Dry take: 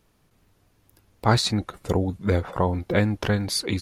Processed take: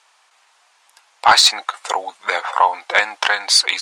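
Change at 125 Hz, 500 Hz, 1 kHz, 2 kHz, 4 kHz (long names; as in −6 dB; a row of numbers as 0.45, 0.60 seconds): below −25 dB, −1.5 dB, +13.0 dB, +14.0 dB, +14.0 dB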